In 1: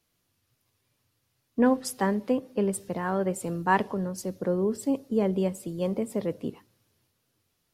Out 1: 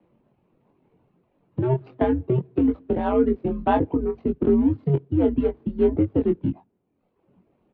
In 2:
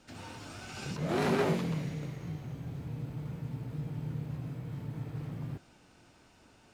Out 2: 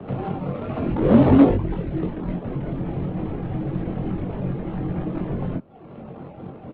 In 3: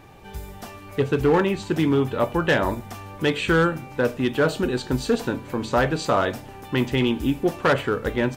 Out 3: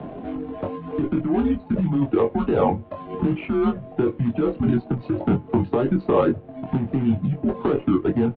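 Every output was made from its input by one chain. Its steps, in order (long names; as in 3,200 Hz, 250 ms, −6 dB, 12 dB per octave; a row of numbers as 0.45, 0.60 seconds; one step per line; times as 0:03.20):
running median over 25 samples
reverb reduction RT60 0.81 s
tilt shelving filter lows +7.5 dB, about 1,200 Hz
compressor whose output falls as the input rises −20 dBFS, ratio −1
single-sideband voice off tune −130 Hz 280–3,600 Hz
double-tracking delay 22 ms −5 dB
multiband upward and downward compressor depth 40%
loudness normalisation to −23 LKFS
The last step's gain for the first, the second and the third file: +4.0, +19.0, +2.5 decibels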